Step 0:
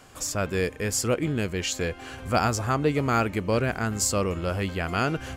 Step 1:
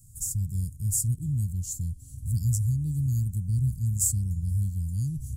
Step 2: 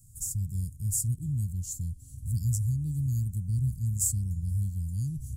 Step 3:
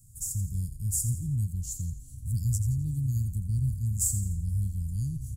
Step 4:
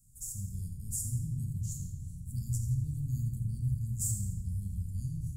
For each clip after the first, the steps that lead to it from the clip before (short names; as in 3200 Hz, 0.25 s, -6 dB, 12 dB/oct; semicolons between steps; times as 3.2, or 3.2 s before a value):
elliptic band-stop 130–8500 Hz, stop band 60 dB; gain +6 dB
band shelf 820 Hz -15 dB 1.2 oct; gain -2.5 dB
hard clip -15.5 dBFS, distortion -54 dB; frequency-shifting echo 85 ms, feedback 42%, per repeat -32 Hz, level -10.5 dB
shoebox room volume 1200 m³, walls mixed, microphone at 1.5 m; gain -8 dB